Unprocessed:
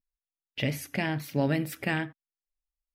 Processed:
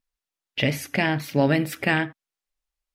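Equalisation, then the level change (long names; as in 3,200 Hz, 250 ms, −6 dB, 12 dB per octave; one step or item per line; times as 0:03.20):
low-shelf EQ 260 Hz −5 dB
high-shelf EQ 9,300 Hz −8 dB
+8.5 dB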